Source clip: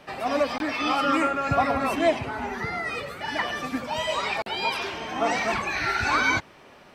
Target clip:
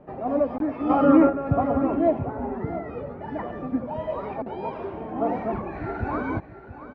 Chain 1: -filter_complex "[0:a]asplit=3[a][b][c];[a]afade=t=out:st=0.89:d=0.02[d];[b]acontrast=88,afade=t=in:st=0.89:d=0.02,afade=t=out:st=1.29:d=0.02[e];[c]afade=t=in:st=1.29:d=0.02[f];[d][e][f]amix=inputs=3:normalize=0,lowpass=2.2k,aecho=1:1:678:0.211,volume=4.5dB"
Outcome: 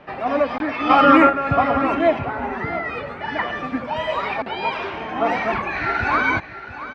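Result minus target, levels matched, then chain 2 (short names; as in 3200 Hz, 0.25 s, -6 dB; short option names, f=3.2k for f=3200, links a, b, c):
2000 Hz band +12.5 dB
-filter_complex "[0:a]asplit=3[a][b][c];[a]afade=t=out:st=0.89:d=0.02[d];[b]acontrast=88,afade=t=in:st=0.89:d=0.02,afade=t=out:st=1.29:d=0.02[e];[c]afade=t=in:st=1.29:d=0.02[f];[d][e][f]amix=inputs=3:normalize=0,lowpass=560,aecho=1:1:678:0.211,volume=4.5dB"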